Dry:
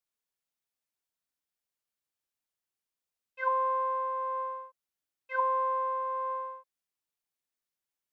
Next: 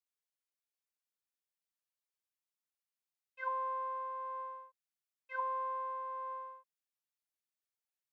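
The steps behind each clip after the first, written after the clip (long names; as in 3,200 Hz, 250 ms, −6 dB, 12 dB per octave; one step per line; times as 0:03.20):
low-shelf EQ 420 Hz −11.5 dB
level −6.5 dB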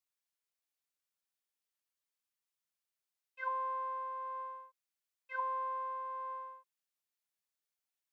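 low-shelf EQ 470 Hz −7.5 dB
level +1.5 dB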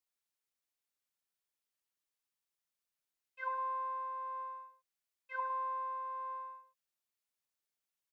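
single-tap delay 104 ms −11.5 dB
level −1 dB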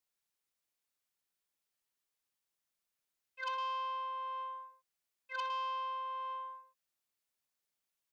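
saturating transformer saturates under 2,300 Hz
level +2 dB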